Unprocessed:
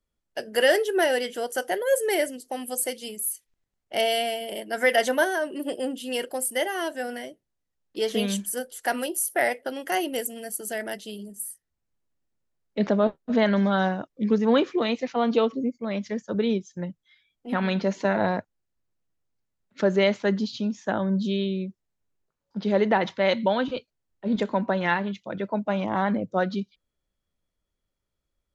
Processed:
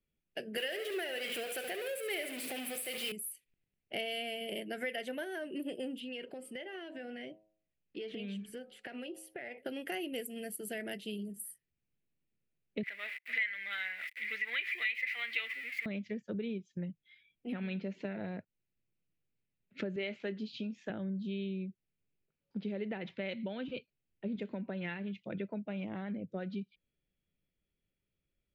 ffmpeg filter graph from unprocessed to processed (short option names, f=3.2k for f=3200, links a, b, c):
-filter_complex "[0:a]asettb=1/sr,asplit=3[a][b][c];[a]atrim=end=0.574[d];[b]atrim=start=0.57:end=3.12,asetpts=PTS-STARTPTS,afade=t=in:d=0.004:c=qsin,afade=t=out:st=2.546:d=0.004:c=qsin,aeval=exprs='val(0)+0.5*0.0631*sgn(val(0))':c=same,highpass=f=850:p=1,aecho=1:1:70|140|210|280|350:0.316|0.142|0.064|0.0288|0.013,atrim=end_sample=112455[e];[c]atrim=start=3.116[f];[d][e]acrossfade=d=0.004:c1=hsin:c2=qsin[g];[g][f]acrossfade=d=0.004:c1=qsin:c2=hsin,asettb=1/sr,asplit=3[h][i][j];[h]atrim=end=6.004[k];[i]atrim=start=6:end=9.58,asetpts=PTS-STARTPTS,afade=t=in:d=0.004:c=qsin,afade=t=out:st=3.576:d=0.004:c=qsin,lowpass=4.4k,bandreject=f=106.9:t=h:w=4,bandreject=f=213.8:t=h:w=4,bandreject=f=320.7:t=h:w=4,bandreject=f=427.6:t=h:w=4,bandreject=f=534.5:t=h:w=4,bandreject=f=641.4:t=h:w=4,bandreject=f=748.3:t=h:w=4,bandreject=f=855.2:t=h:w=4,bandreject=f=962.1:t=h:w=4,bandreject=f=1.069k:t=h:w=4,bandreject=f=1.1759k:t=h:w=4,bandreject=f=1.2828k:t=h:w=4,acompressor=threshold=-36dB:ratio=8:attack=3.2:release=140:knee=1:detection=peak[l];[j]atrim=start=9.576[m];[k][l]acrossfade=d=0.004:c1=hsin:c2=qsin[n];[n][m]acrossfade=d=0.004:c1=qsin:c2=hsin,asettb=1/sr,asplit=3[o][p][q];[o]atrim=end=12.834[r];[p]atrim=start=12.83:end=15.86,asetpts=PTS-STARTPTS,afade=t=in:d=0.004:c=qsin,afade=t=out:st=3.026:d=0.004:c=qsin,aeval=exprs='val(0)+0.5*0.0158*sgn(val(0))':c=same,highpass=f=2k:t=q:w=13[s];[q]atrim=start=15.856[t];[r][s]acrossfade=d=0.004:c1=hsin:c2=qsin[u];[u][t]acrossfade=d=0.004:c1=qsin:c2=hsin,asettb=1/sr,asplit=3[v][w][x];[v]atrim=end=19.964[y];[w]atrim=start=19.96:end=20.9,asetpts=PTS-STARTPTS,afade=t=in:d=0.004:c=qsin,afade=t=out:st=0.936:d=0.004:c=qsin,highpass=f=350:p=1,asplit=2[z][aa];[aa]adelay=23,volume=-12dB[ab];[z][ab]amix=inputs=2:normalize=0,atrim=end_sample=41454[ac];[x]atrim=start=20.896[ad];[y][ac]acrossfade=d=0.004:c1=hsin:c2=qsin[ae];[ae][ad]acrossfade=d=0.004:c1=qsin:c2=hsin,equalizer=f=160:t=o:w=1.4:g=8.5,acompressor=threshold=-30dB:ratio=6,equalizer=f=400:t=o:w=0.67:g=4,equalizer=f=1k:t=o:w=0.67:g=-10,equalizer=f=2.5k:t=o:w=0.67:g=11,equalizer=f=6.3k:t=o:w=0.67:g=-11,volume=-7dB"